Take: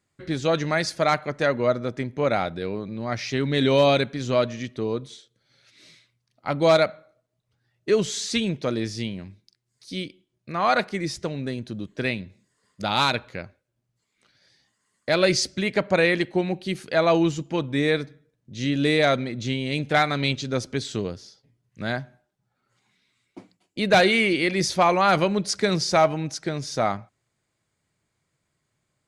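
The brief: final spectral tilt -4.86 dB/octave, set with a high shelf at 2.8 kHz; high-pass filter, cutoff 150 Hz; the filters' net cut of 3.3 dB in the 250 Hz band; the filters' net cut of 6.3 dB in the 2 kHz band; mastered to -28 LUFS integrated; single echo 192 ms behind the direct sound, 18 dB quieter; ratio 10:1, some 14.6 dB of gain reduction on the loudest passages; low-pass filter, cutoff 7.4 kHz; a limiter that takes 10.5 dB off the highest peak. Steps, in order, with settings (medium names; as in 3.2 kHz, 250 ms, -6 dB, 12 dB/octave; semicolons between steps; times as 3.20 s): high-pass 150 Hz; low-pass 7.4 kHz; peaking EQ 250 Hz -3.5 dB; peaking EQ 2 kHz -5.5 dB; treble shelf 2.8 kHz -6 dB; compression 10:1, threshold -29 dBFS; peak limiter -28 dBFS; delay 192 ms -18 dB; trim +10.5 dB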